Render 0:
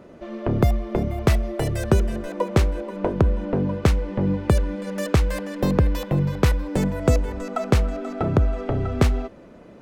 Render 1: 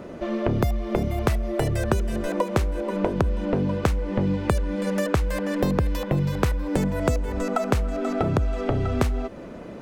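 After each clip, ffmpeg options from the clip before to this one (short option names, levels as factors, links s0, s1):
-filter_complex "[0:a]acrossover=split=2500|7100[s0][s1][s2];[s0]acompressor=threshold=0.0355:ratio=4[s3];[s1]acompressor=threshold=0.00251:ratio=4[s4];[s2]acompressor=threshold=0.00251:ratio=4[s5];[s3][s4][s5]amix=inputs=3:normalize=0,volume=2.37"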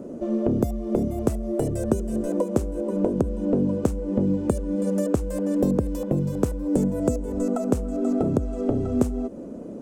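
-af "equalizer=f=250:t=o:w=1:g=11,equalizer=f=500:t=o:w=1:g=6,equalizer=f=1000:t=o:w=1:g=-3,equalizer=f=2000:t=o:w=1:g=-11,equalizer=f=4000:t=o:w=1:g=-8,equalizer=f=8000:t=o:w=1:g=9,volume=0.501"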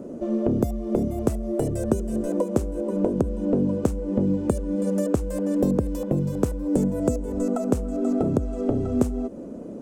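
-af anull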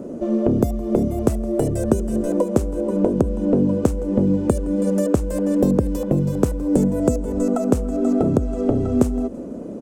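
-af "aecho=1:1:166|332|498:0.0841|0.0362|0.0156,volume=1.68"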